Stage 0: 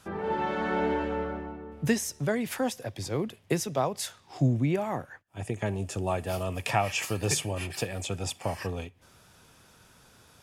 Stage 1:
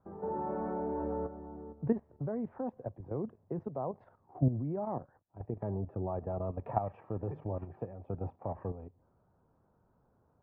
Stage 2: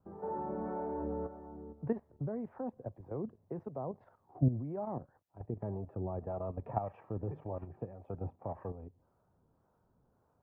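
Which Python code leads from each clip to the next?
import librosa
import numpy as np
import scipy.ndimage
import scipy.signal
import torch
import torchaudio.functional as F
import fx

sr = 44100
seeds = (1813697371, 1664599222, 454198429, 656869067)

y1 = fx.level_steps(x, sr, step_db=11)
y1 = scipy.signal.sosfilt(scipy.signal.butter(4, 1000.0, 'lowpass', fs=sr, output='sos'), y1)
y1 = y1 * 10.0 ** (-1.5 / 20.0)
y2 = fx.harmonic_tremolo(y1, sr, hz=1.8, depth_pct=50, crossover_hz=450.0)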